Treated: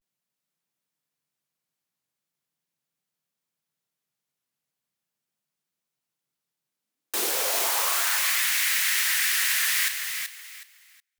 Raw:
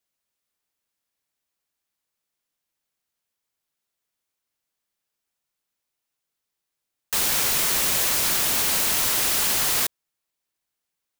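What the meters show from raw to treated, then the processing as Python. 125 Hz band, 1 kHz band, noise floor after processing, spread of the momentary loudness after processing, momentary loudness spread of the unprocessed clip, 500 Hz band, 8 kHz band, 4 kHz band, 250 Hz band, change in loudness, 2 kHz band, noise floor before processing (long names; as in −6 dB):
below −25 dB, −1.5 dB, below −85 dBFS, 10 LU, 4 LU, −2.5 dB, −2.5 dB, −1.5 dB, −10.5 dB, −2.5 dB, +4.0 dB, −83 dBFS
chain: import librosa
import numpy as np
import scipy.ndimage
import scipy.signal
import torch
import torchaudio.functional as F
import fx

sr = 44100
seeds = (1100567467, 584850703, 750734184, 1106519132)

y = fx.filter_sweep_highpass(x, sr, from_hz=150.0, to_hz=1900.0, start_s=6.6, end_s=8.28, q=3.7)
y = fx.echo_feedback(y, sr, ms=382, feedback_pct=25, wet_db=-6.5)
y = fx.vibrato(y, sr, rate_hz=0.4, depth_cents=68.0)
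y = y * librosa.db_to_amplitude(-4.0)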